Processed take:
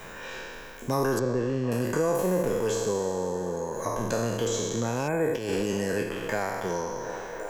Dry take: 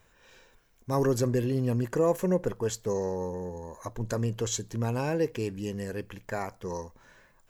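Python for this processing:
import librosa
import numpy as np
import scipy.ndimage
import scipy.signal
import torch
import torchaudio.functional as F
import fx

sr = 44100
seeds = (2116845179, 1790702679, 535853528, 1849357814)

y = fx.spec_trails(x, sr, decay_s=1.45)
y = fx.spacing_loss(y, sr, db_at_10k=27, at=(1.19, 1.72))
y = fx.spec_erase(y, sr, start_s=5.08, length_s=0.27, low_hz=2600.0, high_hz=6800.0)
y = fx.echo_wet_bandpass(y, sr, ms=356, feedback_pct=76, hz=870.0, wet_db=-15.5)
y = fx.over_compress(y, sr, threshold_db=-31.0, ratio=-0.5, at=(5.35, 6.02), fade=0.02)
y = fx.peak_eq(y, sr, hz=77.0, db=-14.5, octaves=0.72)
y = fx.band_squash(y, sr, depth_pct=70)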